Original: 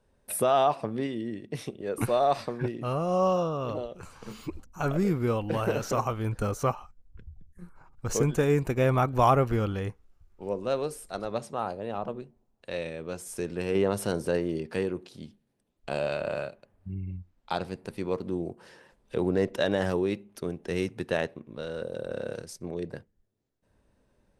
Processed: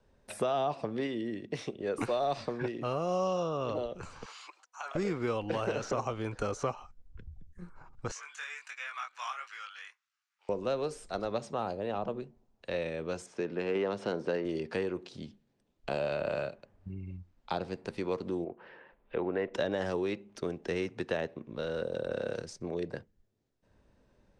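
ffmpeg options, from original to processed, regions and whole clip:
ffmpeg -i in.wav -filter_complex "[0:a]asettb=1/sr,asplit=3[link_01][link_02][link_03];[link_01]atrim=end=4.254[link_04];[link_02]atrim=start=4.25:end=4.95,asetpts=PTS-STARTPTS,afade=type=in:duration=0.004:curve=qsin,afade=type=out:start_time=0.696:duration=0.004:curve=qsin,highpass=frequency=810:width=0.5412,highpass=frequency=810:width=1.3066,acompressor=threshold=-41dB:ratio=2:attack=3.2:release=140:knee=1:detection=peak[link_05];[link_03]atrim=start=4.946[link_06];[link_04][link_05]acrossfade=duration=0.004:curve1=hsin:curve2=qsin[link_07];[link_07][link_06]acrossfade=duration=0.004:curve1=qsin:curve2=hsin,asettb=1/sr,asplit=3[link_08][link_09][link_10];[link_08]atrim=end=8.114[link_11];[link_09]atrim=start=8.11:end=10.49,asetpts=PTS-STARTPTS,afade=type=in:duration=0.004:curve=qsin,afade=type=out:start_time=2.376:duration=0.004:curve=qsin,highpass=frequency=1400:width=0.5412,highpass=frequency=1400:width=1.3066,flanger=delay=19.5:depth=3.8:speed=1.4[link_12];[link_10]atrim=start=10.486[link_13];[link_11][link_12]acrossfade=duration=0.004:curve1=hsin:curve2=qsin[link_14];[link_14][link_13]acrossfade=duration=0.004:curve1=qsin:curve2=hsin,asettb=1/sr,asplit=3[link_15][link_16][link_17];[link_15]atrim=end=13.264[link_18];[link_16]atrim=start=13.26:end=14.45,asetpts=PTS-STARTPTS,afade=type=in:duration=0.004:curve=qsin,afade=type=out:start_time=1.186:duration=0.004:curve=qsin,highpass=160,adynamicsmooth=sensitivity=2.5:basefreq=3100[link_19];[link_17]atrim=start=14.446[link_20];[link_18][link_19]acrossfade=duration=0.004:curve1=hsin:curve2=qsin[link_21];[link_21][link_20]acrossfade=duration=0.004:curve1=qsin:curve2=hsin,asettb=1/sr,asplit=3[link_22][link_23][link_24];[link_22]atrim=end=18.444[link_25];[link_23]atrim=start=18.44:end=19.54,asetpts=PTS-STARTPTS,afade=type=in:duration=0.004:curve=qsin,afade=type=out:start_time=1.096:duration=0.004:curve=qsin,lowpass=frequency=2700:width=0.5412,lowpass=frequency=2700:width=1.3066,equalizer=frequency=98:width_type=o:width=2.8:gain=-9.5[link_26];[link_24]atrim=start=19.536[link_27];[link_25][link_26]acrossfade=duration=0.004:curve1=hsin:curve2=qsin[link_28];[link_28][link_27]acrossfade=duration=0.004:curve1=qsin:curve2=hsin,lowpass=frequency=7300:width=0.5412,lowpass=frequency=7300:width=1.3066,acrossover=split=290|690|2300[link_29][link_30][link_31][link_32];[link_29]acompressor=threshold=-43dB:ratio=4[link_33];[link_30]acompressor=threshold=-34dB:ratio=4[link_34];[link_31]acompressor=threshold=-40dB:ratio=4[link_35];[link_32]acompressor=threshold=-47dB:ratio=4[link_36];[link_33][link_34][link_35][link_36]amix=inputs=4:normalize=0,volume=1.5dB" out.wav

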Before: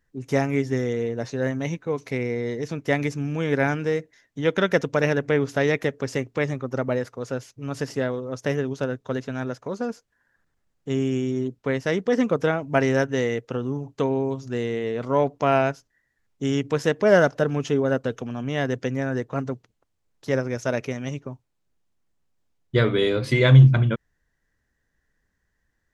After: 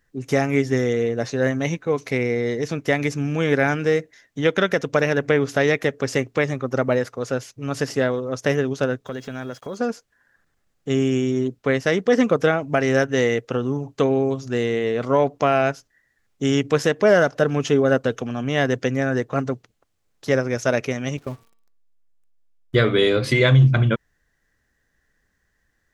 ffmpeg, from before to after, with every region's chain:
ffmpeg -i in.wav -filter_complex "[0:a]asettb=1/sr,asplit=3[link_01][link_02][link_03];[link_01]atrim=end=9.064[link_04];[link_02]atrim=start=9.06:end=9.77,asetpts=PTS-STARTPTS,afade=type=in:duration=0.004:curve=qsin,afade=type=out:start_time=0.706:duration=0.004:curve=qsin,acompressor=threshold=-34dB:ratio=2.5:attack=3.2:release=140:knee=1:detection=peak,aeval=exprs='val(0)+0.000891*sin(2*PI*3300*n/s)':channel_layout=same,aeval=exprs='val(0)*gte(abs(val(0)),0.00141)':channel_layout=same[link_05];[link_03]atrim=start=9.766[link_06];[link_04][link_05]acrossfade=duration=0.004:curve1=hsin:curve2=qsin[link_07];[link_07][link_06]acrossfade=duration=0.004:curve1=qsin:curve2=hsin,asettb=1/sr,asplit=3[link_08][link_09][link_10];[link_08]atrim=end=21.174[link_11];[link_09]atrim=start=21.17:end=22.75,asetpts=PTS-STARTPTS,afade=type=in:duration=0.004:curve=qsin,afade=type=out:start_time=1.576:duration=0.004:curve=qsin,aeval=exprs='val(0)+0.5*0.00794*sgn(val(0))':channel_layout=same,agate=range=-13dB:threshold=-37dB:ratio=16:release=100:detection=peak,bandreject=frequency=228.8:width_type=h:width=4,bandreject=frequency=457.6:width_type=h:width=4,bandreject=frequency=686.4:width_type=h:width=4,bandreject=frequency=915.2:width_type=h:width=4,bandreject=frequency=1144:width_type=h:width=4,bandreject=frequency=1372.8:width_type=h:width=4,bandreject=frequency=1601.6:width_type=h:width=4,bandreject=frequency=1830.4:width_type=h:width=4,bandreject=frequency=2059.2:width_type=h:width=4,bandreject=frequency=2288:width_type=h:width=4,bandreject=frequency=2516.8:width_type=h:width=4,bandreject=frequency=2745.6:width_type=h:width=4,bandreject=frequency=2974.4:width_type=h:width=4,bandreject=frequency=3203.2:width_type=h:width=4,bandreject=frequency=3432:width_type=h:width=4,bandreject=frequency=3660.8:width_type=h:width=4,bandreject=frequency=3889.6:width_type=h:width=4,bandreject=frequency=4118.4:width_type=h:width=4,bandreject=frequency=4347.2:width_type=h:width=4,bandreject=frequency=4576:width_type=h:width=4,bandreject=frequency=4804.8:width_type=h:width=4,bandreject=frequency=5033.6:width_type=h:width=4[link_12];[link_10]atrim=start=22.746[link_13];[link_11][link_12]acrossfade=duration=0.004:curve1=hsin:curve2=qsin[link_14];[link_14][link_13]acrossfade=duration=0.004:curve1=qsin:curve2=hsin,lowshelf=frequency=380:gain=-4,bandreject=frequency=940:width=12,alimiter=limit=-13dB:level=0:latency=1:release=238,volume=6.5dB" out.wav

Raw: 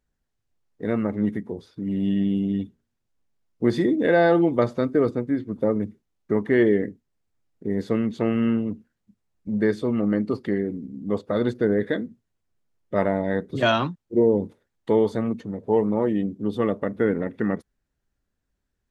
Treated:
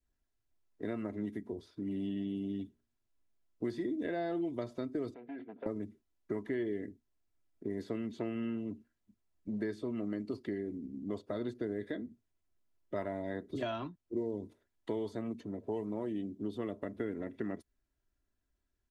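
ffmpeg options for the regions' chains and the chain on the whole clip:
ffmpeg -i in.wav -filter_complex "[0:a]asettb=1/sr,asplit=3[link_01][link_02][link_03];[link_01]atrim=end=5.144[link_04];[link_02]atrim=start=5.14:end=5.66,asetpts=PTS-STARTPTS,afade=type=in:duration=0.004:curve=qsin,afade=type=out:start_time=0.516:duration=0.004:curve=qsin,acompressor=threshold=-27dB:ratio=16:attack=3.2:release=140:knee=1:detection=peak,volume=28.5dB,asoftclip=hard,volume=-28.5dB,highpass=320,equalizer=frequency=330:width_type=q:width=4:gain=-7,equalizer=frequency=470:width_type=q:width=4:gain=4,equalizer=frequency=710:width_type=q:width=4:gain=7,equalizer=frequency=1100:width_type=q:width=4:gain=-9,equalizer=frequency=1600:width_type=q:width=4:gain=5,equalizer=frequency=2300:width_type=q:width=4:gain=4,lowpass=frequency=3100:width=0.5412,lowpass=frequency=3100:width=1.3066[link_05];[link_03]atrim=start=5.656[link_06];[link_04][link_05]acrossfade=duration=0.004:curve1=hsin:curve2=qsin[link_07];[link_07][link_06]acrossfade=duration=0.004:curve1=qsin:curve2=hsin,aecho=1:1:3:0.48,acrossover=split=150|3100[link_08][link_09][link_10];[link_08]acompressor=threshold=-44dB:ratio=4[link_11];[link_09]acompressor=threshold=-29dB:ratio=4[link_12];[link_10]acompressor=threshold=-54dB:ratio=4[link_13];[link_11][link_12][link_13]amix=inputs=3:normalize=0,adynamicequalizer=threshold=0.00282:dfrequency=1300:dqfactor=1.2:tfrequency=1300:tqfactor=1.2:attack=5:release=100:ratio=0.375:range=2:mode=cutabove:tftype=bell,volume=-6.5dB" out.wav

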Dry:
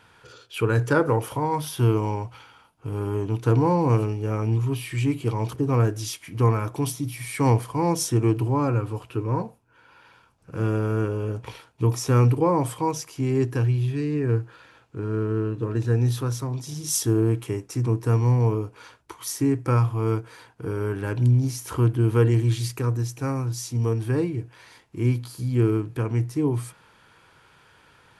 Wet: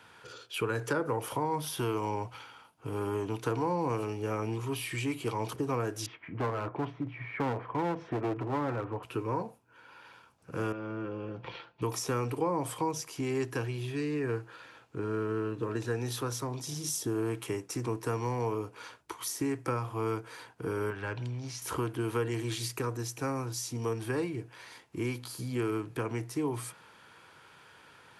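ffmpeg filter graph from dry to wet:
ffmpeg -i in.wav -filter_complex "[0:a]asettb=1/sr,asplit=3[link_01][link_02][link_03];[link_01]atrim=end=6.064[link_04];[link_02]atrim=start=6.06:end=9.03,asetpts=PTS-STARTPTS,afade=type=in:duration=0.004:curve=qsin,afade=type=out:start_time=2.966:duration=0.004:curve=qsin,lowpass=frequency=2100:width=0.5412,lowpass=frequency=2100:width=1.3066,aeval=exprs='clip(val(0),-1,0.0668)':channel_layout=same[link_05];[link_03]atrim=start=9.026[link_06];[link_04][link_05]acrossfade=duration=0.004:curve1=hsin:curve2=qsin[link_07];[link_07][link_06]acrossfade=duration=0.004:curve1=qsin:curve2=hsin,asettb=1/sr,asplit=3[link_08][link_09][link_10];[link_08]atrim=end=10.724[link_11];[link_09]atrim=start=10.72:end=11.82,asetpts=PTS-STARTPTS,afade=type=in:duration=0.004:curve=qsin,afade=type=out:start_time=1.096:duration=0.004:curve=qsin,lowpass=frequency=4100:width=0.5412,lowpass=frequency=4100:width=1.3066,aecho=1:1:5.8:0.51,atrim=end_sample=48510,acompressor=threshold=-38dB:ratio=2:attack=3.2:release=140:knee=1:detection=peak[link_12];[link_10]atrim=start=11.816[link_13];[link_11][link_12]acrossfade=duration=0.004:curve1=hsin:curve2=qsin[link_14];[link_14][link_13]acrossfade=duration=0.004:curve1=qsin:curve2=hsin,asettb=1/sr,asplit=3[link_15][link_16][link_17];[link_15]atrim=end=20.904[link_18];[link_16]atrim=start=20.9:end=21.62,asetpts=PTS-STARTPTS,afade=type=in:duration=0.004:curve=qsin,afade=type=out:start_time=0.716:duration=0.004:curve=qsin,lowpass=4700,equalizer=frequency=280:width=0.7:gain=-10.5[link_19];[link_17]atrim=start=21.616[link_20];[link_18][link_19]acrossfade=duration=0.004:curve1=hsin:curve2=qsin[link_21];[link_21][link_20]acrossfade=duration=0.004:curve1=qsin:curve2=hsin,highpass=frequency=170:poles=1,acrossover=split=290|620[link_22][link_23][link_24];[link_22]acompressor=threshold=-38dB:ratio=4[link_25];[link_23]acompressor=threshold=-35dB:ratio=4[link_26];[link_24]acompressor=threshold=-34dB:ratio=4[link_27];[link_25][link_26][link_27]amix=inputs=3:normalize=0" out.wav

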